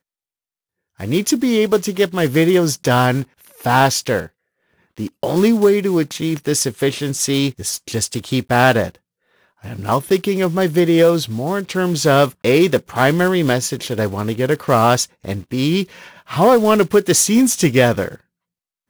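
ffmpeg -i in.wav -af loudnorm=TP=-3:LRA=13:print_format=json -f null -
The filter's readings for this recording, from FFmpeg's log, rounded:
"input_i" : "-16.1",
"input_tp" : "-2.1",
"input_lra" : "2.5",
"input_thresh" : "-26.9",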